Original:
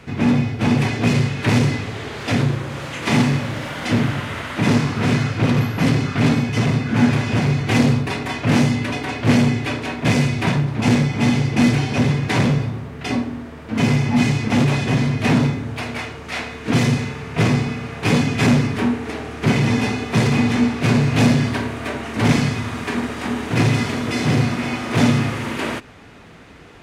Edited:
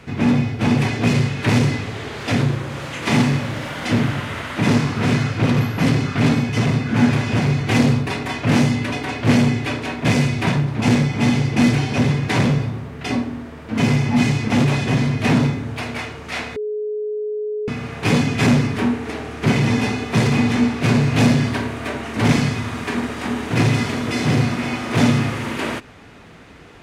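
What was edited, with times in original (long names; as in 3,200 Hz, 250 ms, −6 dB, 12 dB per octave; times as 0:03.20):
0:16.56–0:17.68: beep over 423 Hz −21.5 dBFS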